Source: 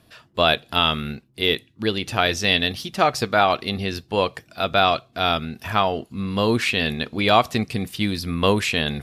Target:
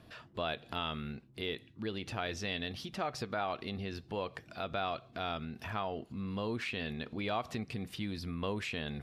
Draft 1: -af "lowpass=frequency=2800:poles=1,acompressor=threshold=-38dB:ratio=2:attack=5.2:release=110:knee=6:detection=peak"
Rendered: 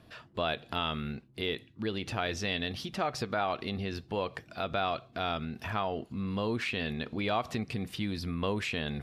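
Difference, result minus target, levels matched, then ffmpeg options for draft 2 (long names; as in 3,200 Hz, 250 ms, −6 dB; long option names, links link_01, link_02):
downward compressor: peak gain reduction −4.5 dB
-af "lowpass=frequency=2800:poles=1,acompressor=threshold=-47dB:ratio=2:attack=5.2:release=110:knee=6:detection=peak"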